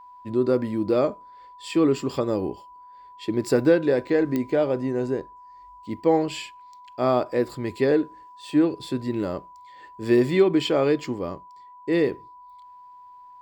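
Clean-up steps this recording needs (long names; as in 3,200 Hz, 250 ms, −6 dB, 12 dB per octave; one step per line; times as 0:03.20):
click removal
notch filter 990 Hz, Q 30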